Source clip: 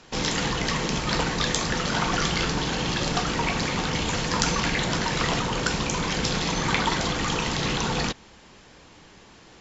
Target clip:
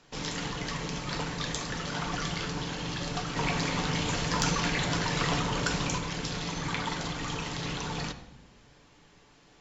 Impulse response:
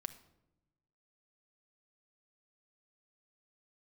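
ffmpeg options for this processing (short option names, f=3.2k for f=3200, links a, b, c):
-filter_complex "[0:a]asettb=1/sr,asplit=3[a][b][c];[a]atrim=end=3.364[d];[b]atrim=start=3.36:end=5.98,asetpts=PTS-STARTPTS,afade=t=in:d=0.004:c=qsin,afade=t=out:st=2.616:d=0.004:c=qsin,acontrast=25[e];[c]atrim=start=5.976[f];[d][e]acrossfade=d=0.004:c1=hsin:c2=qsin[g];[g][f]acrossfade=d=0.004:c1=qsin:c2=hsin[h];[1:a]atrim=start_sample=2205,asetrate=33516,aresample=44100[i];[h][i]afir=irnorm=-1:irlink=0,volume=-7.5dB"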